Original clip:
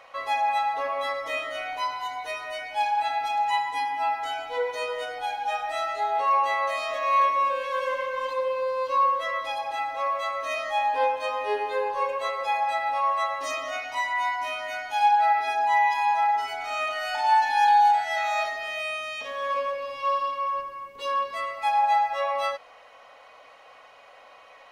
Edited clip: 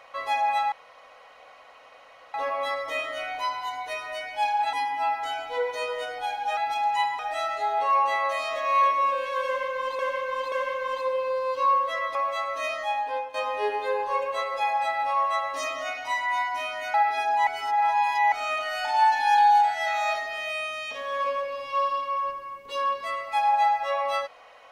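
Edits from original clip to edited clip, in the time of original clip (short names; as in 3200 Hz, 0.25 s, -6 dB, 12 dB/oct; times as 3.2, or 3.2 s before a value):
0.72 insert room tone 1.62 s
3.11–3.73 move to 5.57
7.84–8.37 loop, 3 plays
9.47–10.02 cut
10.57–11.21 fade out, to -11.5 dB
14.81–15.24 cut
15.77–16.62 reverse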